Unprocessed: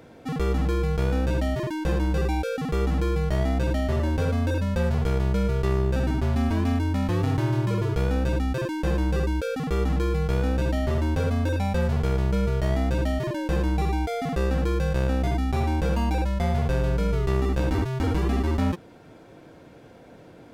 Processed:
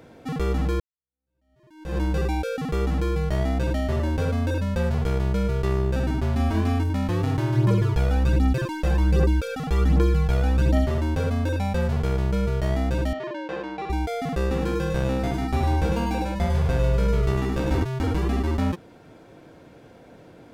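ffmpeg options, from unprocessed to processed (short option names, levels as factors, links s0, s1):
-filter_complex "[0:a]asettb=1/sr,asplit=3[s0][s1][s2];[s0]atrim=end=6.364[s3];[s1]atrim=start=6.36:end=6.9,asetpts=PTS-STARTPTS,afade=t=in:d=0.004:c=qsin,afade=t=out:st=0.536:d=0.004:c=qsin,asplit=2[s4][s5];[s5]adelay=37,volume=0.562[s6];[s4][s6]amix=inputs=2:normalize=0,atrim=end_sample=23814[s7];[s2]atrim=start=6.896[s8];[s3][s7]acrossfade=d=0.004:c1=hsin:c2=qsin[s9];[s9][s8]acrossfade=d=0.004:c1=qsin:c2=hsin,asplit=3[s10][s11][s12];[s10]afade=t=out:st=7.54:d=0.02[s13];[s11]aphaser=in_gain=1:out_gain=1:delay=1.6:decay=0.5:speed=1.3:type=triangular,afade=t=in:st=7.54:d=0.02,afade=t=out:st=10.84:d=0.02[s14];[s12]afade=t=in:st=10.84:d=0.02[s15];[s13][s14][s15]amix=inputs=3:normalize=0,asettb=1/sr,asplit=3[s16][s17][s18];[s16]atrim=end=13.134[s19];[s17]atrim=start=13.13:end=13.9,asetpts=PTS-STARTPTS,afade=t=in:d=0.004:c=qsin,afade=t=out:st=0.766:d=0.004:c=qsin,highpass=380,lowpass=3400[s20];[s18]atrim=start=13.896[s21];[s19][s20]acrossfade=d=0.004:c1=hsin:c2=qsin[s22];[s22][s21]acrossfade=d=0.004:c1=qsin:c2=hsin,asettb=1/sr,asplit=3[s23][s24][s25];[s23]atrim=end=14.414[s26];[s24]atrim=start=14.41:end=17.83,asetpts=PTS-STARTPTS,afade=t=in:d=0.004:c=qsin,afade=t=out:st=3.416:d=0.004:c=qsin,aecho=1:1:101:0.631,atrim=end_sample=150822[s27];[s25]atrim=start=17.826[s28];[s26][s27]acrossfade=d=0.004:c1=hsin:c2=qsin[s29];[s29][s28]acrossfade=d=0.004:c1=qsin:c2=hsin,asplit=2[s30][s31];[s30]atrim=end=0.8,asetpts=PTS-STARTPTS,afade=t=out:st=0.796:d=0.004:c=hsin[s32];[s31]atrim=start=0.8,asetpts=PTS-STARTPTS,afade=t=in:d=1.18:c=exp[s33];[s32][s33]concat=n=2:v=0:a=1"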